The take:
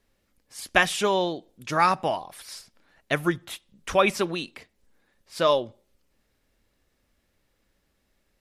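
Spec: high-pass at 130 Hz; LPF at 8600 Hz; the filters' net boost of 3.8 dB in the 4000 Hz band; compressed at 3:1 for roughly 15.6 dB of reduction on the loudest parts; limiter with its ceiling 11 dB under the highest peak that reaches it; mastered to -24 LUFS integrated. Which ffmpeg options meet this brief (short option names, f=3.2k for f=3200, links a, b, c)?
-af "highpass=130,lowpass=8.6k,equalizer=f=4k:t=o:g=5,acompressor=threshold=-36dB:ratio=3,volume=15dB,alimiter=limit=-10.5dB:level=0:latency=1"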